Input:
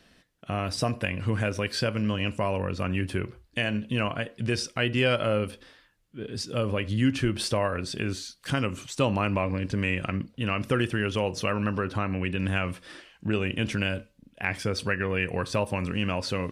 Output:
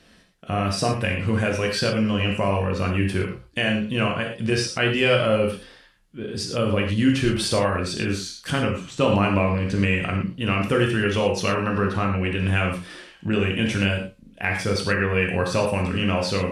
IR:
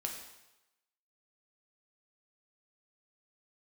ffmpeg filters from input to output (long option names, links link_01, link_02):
-filter_complex "[0:a]asettb=1/sr,asplit=3[link_01][link_02][link_03];[link_01]atrim=end=8.594[link_04];[link_02]atrim=start=8.59:end=9.01,asetpts=PTS-STARTPTS,afade=type=in:duration=0.004:curve=qsin,afade=type=out:start_time=0.416:duration=0.004:curve=qsin,lowpass=frequency=2600:poles=1[link_05];[link_03]atrim=start=9.006[link_06];[link_04][link_05]acrossfade=duration=0.004:curve1=hsin:curve2=qsin[link_07];[link_07][link_06]acrossfade=duration=0.004:curve1=qsin:curve2=hsin[link_08];[1:a]atrim=start_sample=2205,atrim=end_sample=3087,asetrate=24696,aresample=44100[link_09];[link_08][link_09]afir=irnorm=-1:irlink=0,volume=2dB"